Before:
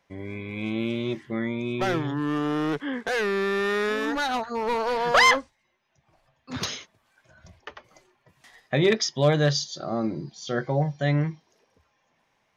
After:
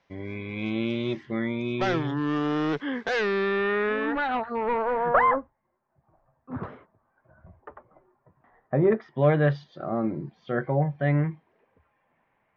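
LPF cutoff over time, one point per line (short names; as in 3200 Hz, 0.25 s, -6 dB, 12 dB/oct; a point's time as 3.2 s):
LPF 24 dB/oct
3.16 s 5600 Hz
3.76 s 2700 Hz
4.57 s 2700 Hz
5.32 s 1300 Hz
8.82 s 1300 Hz
9.29 s 2300 Hz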